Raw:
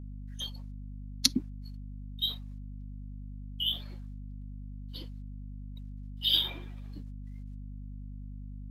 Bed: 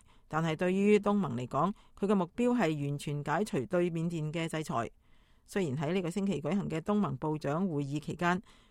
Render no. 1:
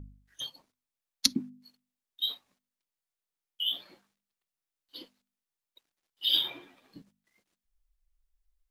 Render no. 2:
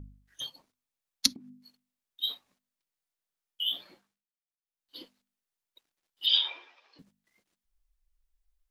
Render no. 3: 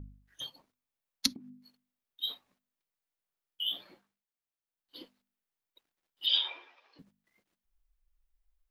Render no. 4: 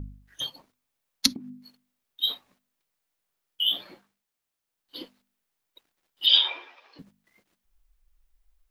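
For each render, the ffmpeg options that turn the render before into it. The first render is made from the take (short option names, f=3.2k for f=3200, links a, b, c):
-af "bandreject=f=50:t=h:w=4,bandreject=f=100:t=h:w=4,bandreject=f=150:t=h:w=4,bandreject=f=200:t=h:w=4,bandreject=f=250:t=h:w=4"
-filter_complex "[0:a]asplit=3[a][b][c];[a]afade=t=out:st=1.33:d=0.02[d];[b]acompressor=threshold=-43dB:ratio=6:attack=3.2:release=140:knee=1:detection=peak,afade=t=in:st=1.33:d=0.02,afade=t=out:st=2.22:d=0.02[e];[c]afade=t=in:st=2.22:d=0.02[f];[d][e][f]amix=inputs=3:normalize=0,asettb=1/sr,asplit=3[g][h][i];[g]atrim=end=6.264[j];[h]atrim=start=6.26:end=6.99,asetpts=PTS-STARTPTS,afade=t=in:d=0.004:c=qsin,afade=t=out:st=0.726:d=0.004:c=qsin,highpass=f=500:w=0.5412,highpass=f=500:w=1.3066,equalizer=f=670:t=q:w=4:g=-4,equalizer=f=970:t=q:w=4:g=4,equalizer=f=2.6k:t=q:w=4:g=5,equalizer=f=5.3k:t=q:w=4:g=7,lowpass=f=5.7k:w=0.5412,lowpass=f=5.7k:w=1.3066[k];[i]atrim=start=6.986[l];[j][k]acrossfade=d=0.004:c1=hsin:c2=qsin[m];[m][l]acrossfade=d=0.004:c1=qsin:c2=hsin,asplit=3[n][o][p];[n]atrim=end=4.3,asetpts=PTS-STARTPTS,afade=t=out:st=3.89:d=0.41:silence=0.0707946[q];[o]atrim=start=4.3:end=4.6,asetpts=PTS-STARTPTS,volume=-23dB[r];[p]atrim=start=4.6,asetpts=PTS-STARTPTS,afade=t=in:d=0.41:silence=0.0707946[s];[q][r][s]concat=n=3:v=0:a=1"
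-af "equalizer=f=7.1k:w=0.51:g=-6"
-af "volume=9dB,alimiter=limit=-3dB:level=0:latency=1"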